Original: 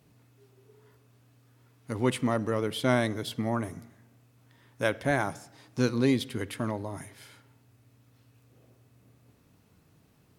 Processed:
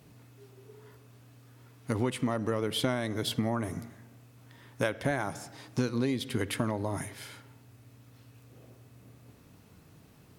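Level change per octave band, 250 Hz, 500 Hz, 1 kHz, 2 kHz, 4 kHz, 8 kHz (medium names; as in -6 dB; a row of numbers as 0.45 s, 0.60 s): -2.5 dB, -3.0 dB, -3.0 dB, -3.5 dB, +1.5 dB, +1.0 dB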